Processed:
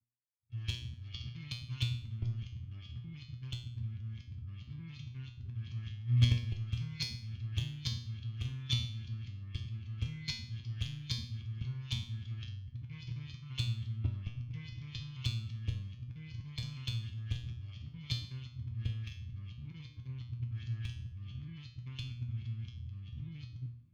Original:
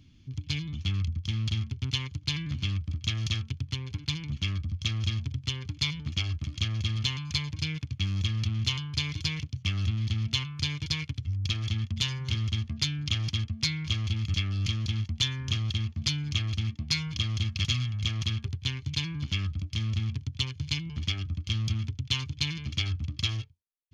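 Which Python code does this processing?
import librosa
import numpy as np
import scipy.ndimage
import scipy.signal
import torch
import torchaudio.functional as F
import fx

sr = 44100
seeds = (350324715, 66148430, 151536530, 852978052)

y = np.flip(x).copy()
y = scipy.signal.sosfilt(scipy.signal.butter(4, 6800.0, 'lowpass', fs=sr, output='sos'), y)
y = fx.low_shelf(y, sr, hz=72.0, db=-3.5)
y = fx.level_steps(y, sr, step_db=13)
y = fx.bass_treble(y, sr, bass_db=10, treble_db=-6)
y = np.clip(y, -10.0 ** (-16.5 / 20.0), 10.0 ** (-16.5 / 20.0))
y = fx.comb_fb(y, sr, f0_hz=120.0, decay_s=0.71, harmonics='all', damping=0.0, mix_pct=90)
y = fx.echo_wet_lowpass(y, sr, ms=302, feedback_pct=77, hz=1400.0, wet_db=-20)
y = fx.band_widen(y, sr, depth_pct=70)
y = F.gain(torch.from_numpy(y), 4.0).numpy()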